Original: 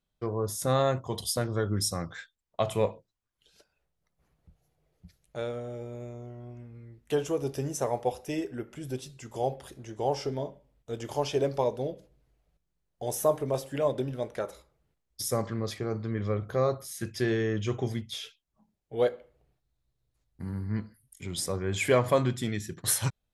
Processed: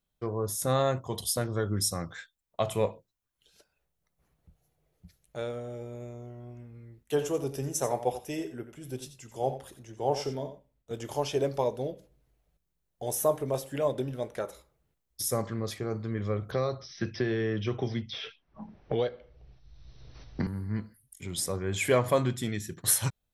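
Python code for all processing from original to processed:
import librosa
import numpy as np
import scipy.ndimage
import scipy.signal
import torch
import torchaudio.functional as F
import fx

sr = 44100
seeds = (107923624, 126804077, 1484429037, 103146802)

y = fx.chain(x, sr, fx.echo_single(ms=89, db=-11.0),
    fx.band_widen(depth_pct=40), at=(7.03, 10.91))
y = fx.chain(y, sr, fx.brickwall_lowpass(high_hz=6100.0),
    fx.band_squash(depth_pct=100), at=(16.51, 20.47))
y = fx.high_shelf(y, sr, hz=11000.0, db=8.5)
y = fx.notch(y, sr, hz=4800.0, q=29.0)
y = F.gain(torch.from_numpy(y), -1.0).numpy()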